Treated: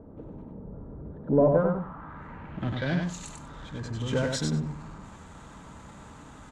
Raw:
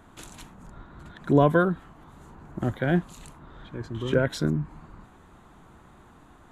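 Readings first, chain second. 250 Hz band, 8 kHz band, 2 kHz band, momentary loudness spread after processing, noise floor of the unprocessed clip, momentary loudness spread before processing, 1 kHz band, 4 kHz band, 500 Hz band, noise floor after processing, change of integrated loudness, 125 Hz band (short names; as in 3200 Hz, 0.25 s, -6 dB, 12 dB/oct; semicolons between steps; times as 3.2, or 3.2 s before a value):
-3.0 dB, +5.5 dB, -5.0 dB, 24 LU, -53 dBFS, 21 LU, -5.0 dB, +2.0 dB, -0.5 dB, -48 dBFS, -3.0 dB, -2.0 dB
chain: notch comb 360 Hz; power-law curve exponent 0.7; low-pass sweep 460 Hz -> 7400 Hz, 1.18–3.25; on a send: feedback echo 96 ms, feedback 18%, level -4 dB; on the sum: gain -8 dB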